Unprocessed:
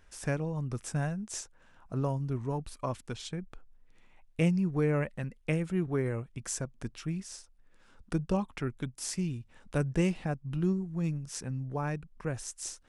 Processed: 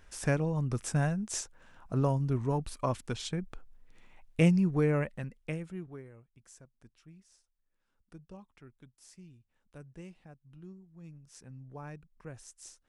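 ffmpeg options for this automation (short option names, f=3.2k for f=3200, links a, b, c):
-af "volume=12dB,afade=t=out:st=4.51:d=1.07:silence=0.298538,afade=t=out:st=5.58:d=0.5:silence=0.237137,afade=t=in:st=10.92:d=0.85:silence=0.354813"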